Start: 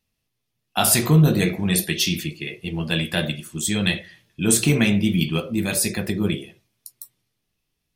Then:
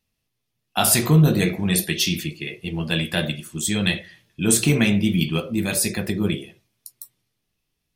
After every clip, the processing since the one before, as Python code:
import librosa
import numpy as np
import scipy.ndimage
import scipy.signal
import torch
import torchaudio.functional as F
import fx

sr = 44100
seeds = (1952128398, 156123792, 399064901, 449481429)

y = x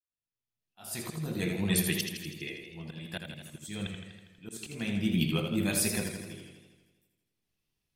y = fx.fade_in_head(x, sr, length_s=1.57)
y = fx.auto_swell(y, sr, attack_ms=504.0)
y = fx.echo_warbled(y, sr, ms=81, feedback_pct=65, rate_hz=2.8, cents=68, wet_db=-6.5)
y = y * 10.0 ** (-7.5 / 20.0)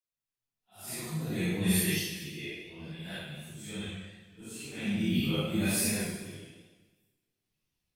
y = fx.phase_scramble(x, sr, seeds[0], window_ms=200)